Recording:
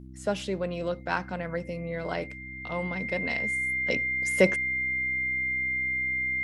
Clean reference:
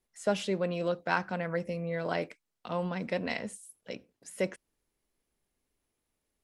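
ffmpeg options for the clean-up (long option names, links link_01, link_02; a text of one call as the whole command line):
ffmpeg -i in.wav -af "bandreject=frequency=64.2:width_type=h:width=4,bandreject=frequency=128.4:width_type=h:width=4,bandreject=frequency=192.6:width_type=h:width=4,bandreject=frequency=256.8:width_type=h:width=4,bandreject=frequency=321:width_type=h:width=4,bandreject=frequency=2100:width=30,asetnsamples=nb_out_samples=441:pad=0,asendcmd='3.87 volume volume -10dB',volume=0dB" out.wav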